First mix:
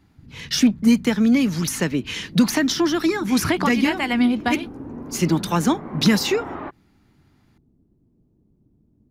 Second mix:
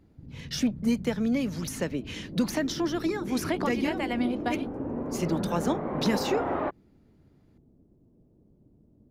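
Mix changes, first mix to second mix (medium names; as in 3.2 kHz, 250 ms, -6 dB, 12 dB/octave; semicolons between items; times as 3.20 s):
speech -11.0 dB; master: add peaking EQ 560 Hz +9 dB 0.79 oct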